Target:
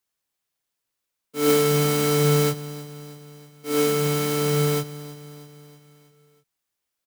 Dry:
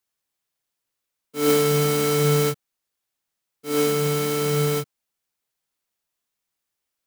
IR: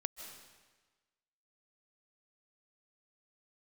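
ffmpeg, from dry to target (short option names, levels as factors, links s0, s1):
-af "aecho=1:1:320|640|960|1280|1600:0.141|0.0791|0.0443|0.0248|0.0139"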